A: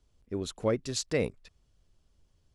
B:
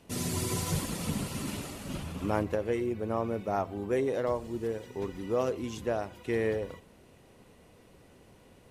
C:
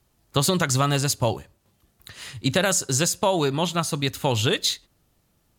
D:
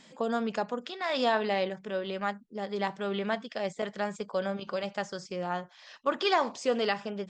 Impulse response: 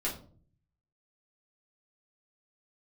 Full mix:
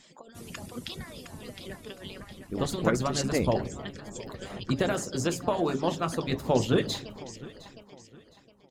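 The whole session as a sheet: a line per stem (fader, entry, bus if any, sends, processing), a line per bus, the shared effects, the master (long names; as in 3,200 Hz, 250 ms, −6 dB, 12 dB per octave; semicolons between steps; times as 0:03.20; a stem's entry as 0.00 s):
+1.0 dB, 2.20 s, no send, no echo send, no processing
−10.0 dB, 0.25 s, no send, echo send −8 dB, downward expander −49 dBFS; high-shelf EQ 7,600 Hz +5 dB; automatic ducking −8 dB, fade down 1.70 s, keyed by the fourth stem
−12.5 dB, 2.25 s, send −7.5 dB, echo send −16.5 dB, high-shelf EQ 2,500 Hz −11 dB; automatic gain control gain up to 10 dB
−8.5 dB, 0.00 s, send −13 dB, echo send −6 dB, high-shelf EQ 2,200 Hz +10.5 dB; compressor whose output falls as the input rises −34 dBFS, ratio −1; reverb reduction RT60 0.6 s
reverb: on, RT60 0.45 s, pre-delay 5 ms
echo: repeating echo 712 ms, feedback 35%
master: harmonic and percussive parts rebalanced harmonic −16 dB; low-shelf EQ 420 Hz +9 dB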